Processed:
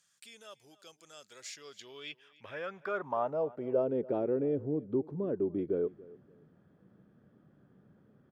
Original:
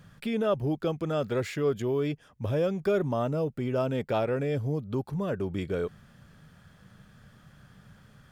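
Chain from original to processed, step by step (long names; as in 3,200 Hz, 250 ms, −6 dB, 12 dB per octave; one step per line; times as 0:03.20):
band-pass filter sweep 7,200 Hz → 340 Hz, 0:01.33–0:04.07
repeating echo 285 ms, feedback 23%, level −21 dB
level +3.5 dB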